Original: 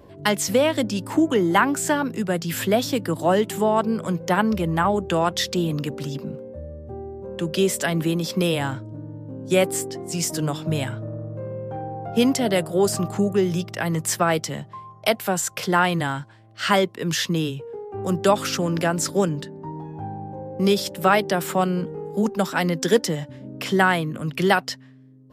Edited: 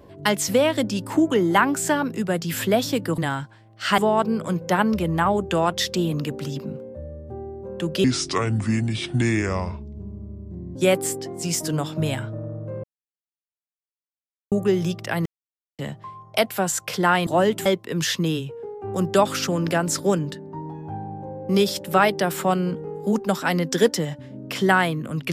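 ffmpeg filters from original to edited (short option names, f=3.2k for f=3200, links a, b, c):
-filter_complex "[0:a]asplit=11[a][b][c][d][e][f][g][h][i][j][k];[a]atrim=end=3.182[l];[b]atrim=start=15.958:end=16.762[m];[c]atrim=start=3.568:end=7.634[n];[d]atrim=start=7.63:end=9.45,asetpts=PTS-STARTPTS,asetrate=29547,aresample=44100,atrim=end_sample=119794,asetpts=PTS-STARTPTS[o];[e]atrim=start=9.446:end=11.53,asetpts=PTS-STARTPTS,afade=t=out:st=2.08:d=0.004:c=hsin[p];[f]atrim=start=11.53:end=13.21,asetpts=PTS-STARTPTS,volume=0[q];[g]atrim=start=13.21:end=13.95,asetpts=PTS-STARTPTS,afade=t=in:d=0.004:c=hsin,afade=t=out:st=0.736:d=0.004:c=hsin[r];[h]atrim=start=13.95:end=14.48,asetpts=PTS-STARTPTS,volume=0[s];[i]atrim=start=14.48:end=15.962,asetpts=PTS-STARTPTS,afade=t=in:d=0.004:c=hsin[t];[j]atrim=start=3.178:end=3.572[u];[k]atrim=start=16.758[v];[l][m]acrossfade=d=0.004:c1=hsin:c2=hsin[w];[w][n]acrossfade=d=0.004:c1=hsin:c2=hsin[x];[x][o]acrossfade=d=0.004:c1=hsin:c2=hsin[y];[p][q][r][s][t]concat=n=5:v=0:a=1[z];[y][z]acrossfade=d=0.004:c1=hsin:c2=hsin[aa];[aa][u]acrossfade=d=0.004:c1=hsin:c2=hsin[ab];[ab][v]acrossfade=d=0.004:c1=hsin:c2=hsin"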